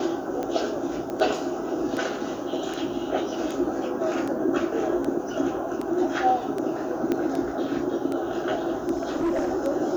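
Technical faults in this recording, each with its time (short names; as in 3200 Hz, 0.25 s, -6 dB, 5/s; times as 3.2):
tick 78 rpm -18 dBFS
1.1 pop -20 dBFS
7.12 pop -13 dBFS
8.92–9.53 clipped -21 dBFS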